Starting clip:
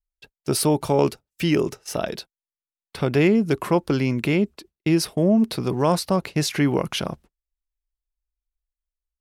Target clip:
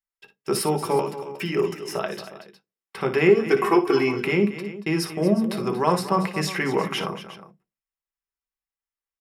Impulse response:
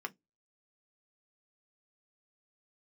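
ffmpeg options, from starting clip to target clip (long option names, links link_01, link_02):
-filter_complex "[0:a]equalizer=frequency=270:width=2.4:gain=-7.5,asplit=3[link_01][link_02][link_03];[link_01]afade=type=out:start_time=0.99:duration=0.02[link_04];[link_02]acompressor=threshold=-24dB:ratio=6,afade=type=in:start_time=0.99:duration=0.02,afade=type=out:start_time=1.56:duration=0.02[link_05];[link_03]afade=type=in:start_time=1.56:duration=0.02[link_06];[link_04][link_05][link_06]amix=inputs=3:normalize=0,asettb=1/sr,asplit=3[link_07][link_08][link_09];[link_07]atrim=end=3.284[link_10];[link_08]atrim=start=3.28:end=4.19,asetpts=PTS-STARTPTS,afade=type=in:duration=0.004:curve=qsin,afade=type=out:start_time=0.906:duration=0.004:curve=qsin,aecho=1:1:2.7:0.92,atrim=end_sample=40131[link_11];[link_09]atrim=start=4.186[link_12];[link_10][link_11]acrossfade=duration=0.004:curve1=hsin:curve2=qsin[link_13];[link_13][link_12]acrossfade=duration=0.004:curve1=qsin:curve2=hsin,aecho=1:1:58|233|361:0.266|0.224|0.158[link_14];[1:a]atrim=start_sample=2205[link_15];[link_14][link_15]afir=irnorm=-1:irlink=0,volume=1dB"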